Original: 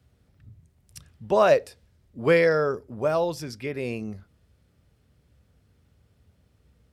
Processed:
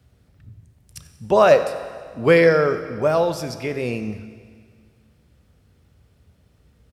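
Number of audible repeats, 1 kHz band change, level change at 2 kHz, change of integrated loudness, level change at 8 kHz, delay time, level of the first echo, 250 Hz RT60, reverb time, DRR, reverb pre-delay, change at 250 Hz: 1, +5.5 dB, +5.0 dB, +5.0 dB, +5.5 dB, 92 ms, −19.0 dB, 1.9 s, 1.9 s, 10.0 dB, 18 ms, +6.0 dB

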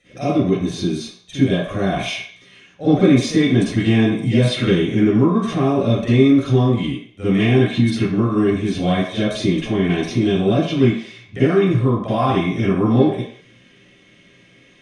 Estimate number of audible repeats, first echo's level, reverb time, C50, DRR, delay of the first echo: no echo audible, no echo audible, 0.60 s, −6.5 dB, −13.0 dB, no echo audible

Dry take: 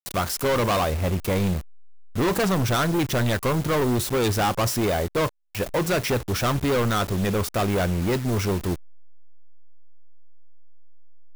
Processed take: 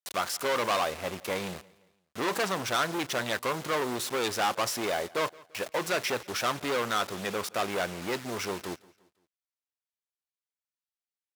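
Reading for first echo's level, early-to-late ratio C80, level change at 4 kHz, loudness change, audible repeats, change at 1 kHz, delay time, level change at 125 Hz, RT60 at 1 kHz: −23.5 dB, no reverb audible, −2.5 dB, −6.5 dB, 2, −3.5 dB, 171 ms, −19.5 dB, no reverb audible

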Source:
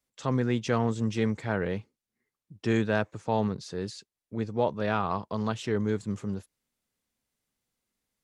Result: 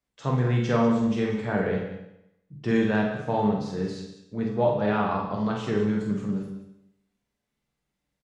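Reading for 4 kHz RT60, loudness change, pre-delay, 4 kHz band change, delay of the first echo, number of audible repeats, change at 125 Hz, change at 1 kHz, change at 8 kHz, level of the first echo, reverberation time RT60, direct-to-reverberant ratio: 0.80 s, +4.0 dB, 7 ms, 0.0 dB, 48 ms, 2, +3.5 dB, +3.0 dB, can't be measured, −5.0 dB, 0.85 s, −2.0 dB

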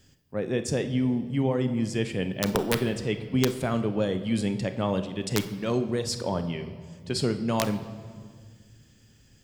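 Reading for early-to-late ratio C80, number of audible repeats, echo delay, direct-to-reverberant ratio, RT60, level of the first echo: 13.0 dB, no echo audible, no echo audible, 8.5 dB, 1.8 s, no echo audible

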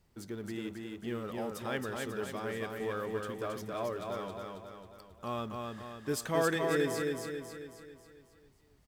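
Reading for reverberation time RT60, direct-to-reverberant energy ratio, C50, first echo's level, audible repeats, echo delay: no reverb audible, no reverb audible, no reverb audible, −3.5 dB, 6, 271 ms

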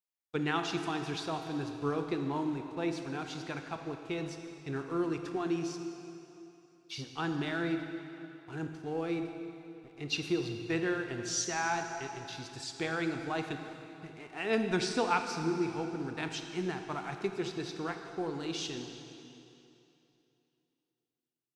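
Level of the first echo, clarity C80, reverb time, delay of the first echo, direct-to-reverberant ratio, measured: no echo audible, 7.0 dB, 2.9 s, no echo audible, 5.5 dB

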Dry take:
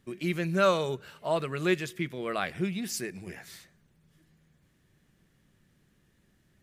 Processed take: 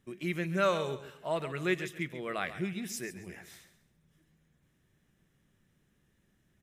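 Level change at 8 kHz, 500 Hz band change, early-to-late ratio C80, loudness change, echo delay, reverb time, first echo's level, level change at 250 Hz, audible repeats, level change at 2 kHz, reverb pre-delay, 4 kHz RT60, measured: −4.5 dB, −4.0 dB, no reverb audible, −4.0 dB, 137 ms, no reverb audible, −13.0 dB, −4.0 dB, 3, −2.0 dB, no reverb audible, no reverb audible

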